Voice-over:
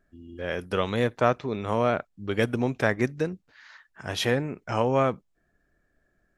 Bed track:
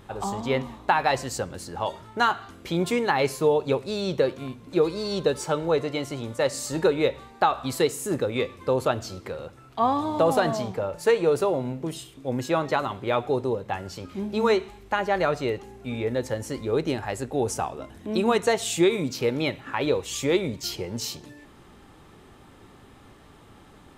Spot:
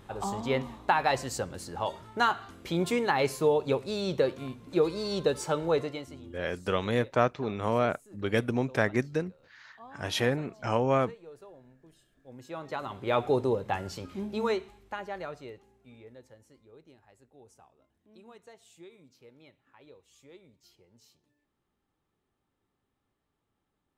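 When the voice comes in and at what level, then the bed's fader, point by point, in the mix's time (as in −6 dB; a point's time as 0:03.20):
5.95 s, −2.5 dB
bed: 0:05.81 −3.5 dB
0:06.44 −27 dB
0:12.05 −27 dB
0:13.20 −1 dB
0:13.84 −1 dB
0:16.77 −30.5 dB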